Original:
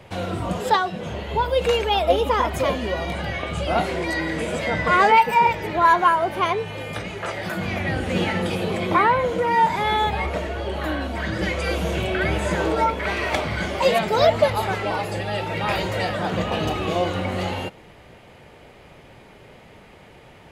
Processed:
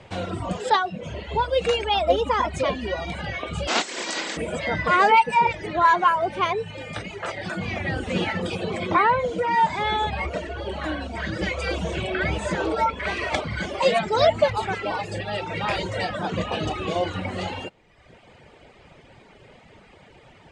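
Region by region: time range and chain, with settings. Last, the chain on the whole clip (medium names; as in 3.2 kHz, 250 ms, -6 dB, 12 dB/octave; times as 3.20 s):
3.67–4.36 s: spectral contrast reduction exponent 0.35 + brick-wall FIR band-pass 180–8200 Hz
whole clip: elliptic low-pass 8.7 kHz, stop band 60 dB; reverb removal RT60 0.98 s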